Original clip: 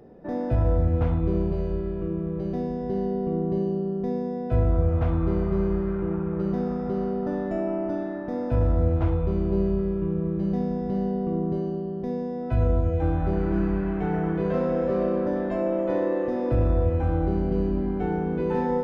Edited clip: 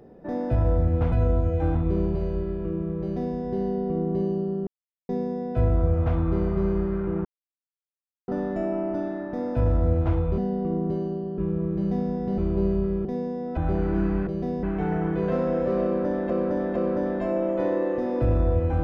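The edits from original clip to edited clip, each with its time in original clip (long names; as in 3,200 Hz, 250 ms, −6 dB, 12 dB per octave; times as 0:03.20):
0:02.38–0:02.74: duplicate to 0:13.85
0:04.04: splice in silence 0.42 s
0:06.20–0:07.23: silence
0:09.33–0:10.00: swap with 0:11.00–0:12.00
0:12.52–0:13.15: move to 0:01.12
0:15.06–0:15.52: repeat, 3 plays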